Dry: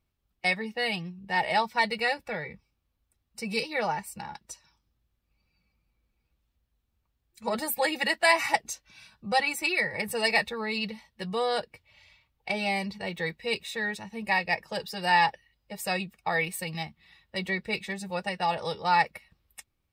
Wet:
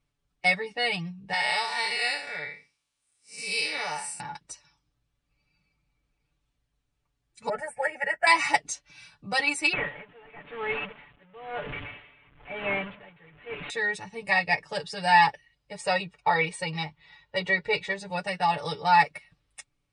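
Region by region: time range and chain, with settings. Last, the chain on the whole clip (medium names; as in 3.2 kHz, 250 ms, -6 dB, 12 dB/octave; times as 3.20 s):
1.33–4.20 s: spectral blur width 154 ms + tilt EQ +4 dB/octave
7.49–8.27 s: resonant high shelf 2.2 kHz -10 dB, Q 1.5 + static phaser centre 1.1 kHz, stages 6
9.73–13.70 s: one-bit delta coder 16 kbps, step -30.5 dBFS + logarithmic tremolo 1 Hz, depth 24 dB
15.80–18.10 s: low-pass 6.2 kHz + peaking EQ 820 Hz +5.5 dB 1.2 oct + comb 2.1 ms, depth 46%
whole clip: Chebyshev low-pass 10 kHz, order 8; comb 6.9 ms, depth 86%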